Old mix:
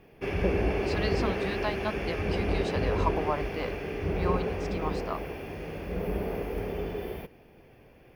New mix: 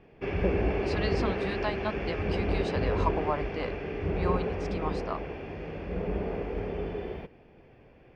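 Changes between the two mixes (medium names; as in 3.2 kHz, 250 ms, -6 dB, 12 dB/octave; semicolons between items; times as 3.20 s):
speech: remove distance through air 120 m; master: add distance through air 160 m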